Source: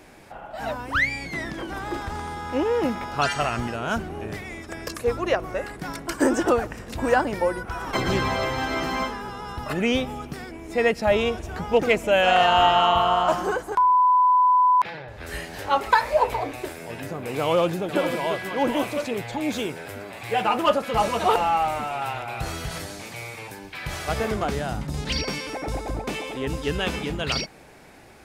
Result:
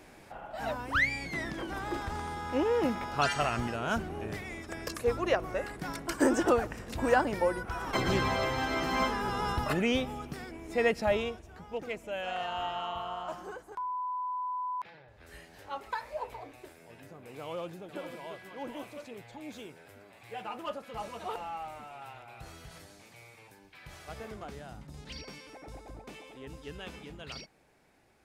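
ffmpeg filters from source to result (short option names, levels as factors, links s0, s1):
-af "volume=1.5,afade=t=in:st=8.87:d=0.59:silence=0.375837,afade=t=out:st=9.46:d=0.38:silence=0.334965,afade=t=out:st=11.01:d=0.42:silence=0.266073"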